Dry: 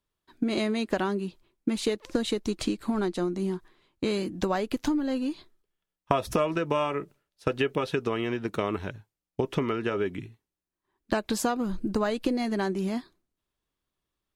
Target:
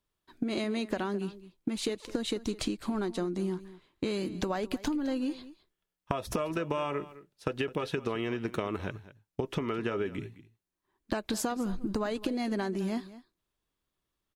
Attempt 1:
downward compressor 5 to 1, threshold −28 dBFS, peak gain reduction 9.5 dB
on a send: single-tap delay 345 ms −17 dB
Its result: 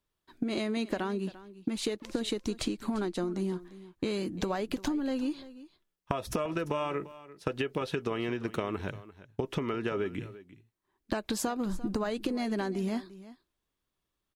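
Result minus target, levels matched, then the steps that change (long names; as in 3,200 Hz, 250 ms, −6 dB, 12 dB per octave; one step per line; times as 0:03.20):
echo 134 ms late
change: single-tap delay 211 ms −17 dB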